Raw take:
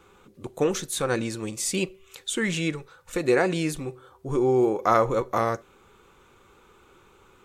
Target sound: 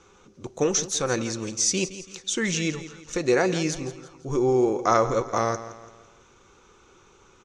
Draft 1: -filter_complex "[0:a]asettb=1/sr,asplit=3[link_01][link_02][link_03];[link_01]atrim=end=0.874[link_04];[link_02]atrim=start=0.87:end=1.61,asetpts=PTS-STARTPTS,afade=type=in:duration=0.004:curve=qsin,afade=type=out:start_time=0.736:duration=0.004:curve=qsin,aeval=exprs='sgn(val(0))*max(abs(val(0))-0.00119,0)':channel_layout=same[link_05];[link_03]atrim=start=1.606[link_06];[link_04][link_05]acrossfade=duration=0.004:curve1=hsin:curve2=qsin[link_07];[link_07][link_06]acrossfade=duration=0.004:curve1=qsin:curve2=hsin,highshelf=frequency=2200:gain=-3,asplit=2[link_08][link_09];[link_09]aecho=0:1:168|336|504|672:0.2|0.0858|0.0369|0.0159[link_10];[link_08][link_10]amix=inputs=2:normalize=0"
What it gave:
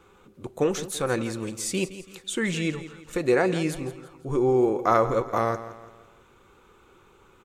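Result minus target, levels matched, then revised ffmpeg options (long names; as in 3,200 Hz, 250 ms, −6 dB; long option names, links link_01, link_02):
8,000 Hz band −8.0 dB
-filter_complex "[0:a]asettb=1/sr,asplit=3[link_01][link_02][link_03];[link_01]atrim=end=0.874[link_04];[link_02]atrim=start=0.87:end=1.61,asetpts=PTS-STARTPTS,afade=type=in:duration=0.004:curve=qsin,afade=type=out:start_time=0.736:duration=0.004:curve=qsin,aeval=exprs='sgn(val(0))*max(abs(val(0))-0.00119,0)':channel_layout=same[link_05];[link_03]atrim=start=1.606[link_06];[link_04][link_05]acrossfade=duration=0.004:curve1=hsin:curve2=qsin[link_07];[link_07][link_06]acrossfade=duration=0.004:curve1=qsin:curve2=hsin,lowpass=frequency=6000:width_type=q:width=6.1,highshelf=frequency=2200:gain=-3,asplit=2[link_08][link_09];[link_09]aecho=0:1:168|336|504|672:0.2|0.0858|0.0369|0.0159[link_10];[link_08][link_10]amix=inputs=2:normalize=0"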